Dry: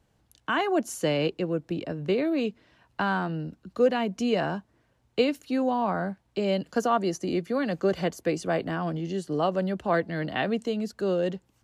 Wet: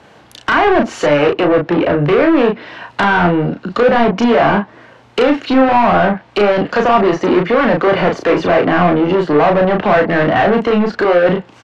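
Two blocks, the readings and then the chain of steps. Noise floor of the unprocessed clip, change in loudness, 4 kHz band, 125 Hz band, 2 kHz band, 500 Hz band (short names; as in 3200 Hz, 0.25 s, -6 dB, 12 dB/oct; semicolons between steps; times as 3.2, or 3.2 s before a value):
-69 dBFS, +15.0 dB, +11.5 dB, +13.0 dB, +17.0 dB, +15.0 dB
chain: HPF 60 Hz; high shelf 4100 Hz -9.5 dB; overdrive pedal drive 33 dB, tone 5800 Hz, clips at -10.5 dBFS; treble ducked by the level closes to 2200 Hz, closed at -17 dBFS; high shelf 8800 Hz -9.5 dB; doubler 34 ms -4 dB; gain +5 dB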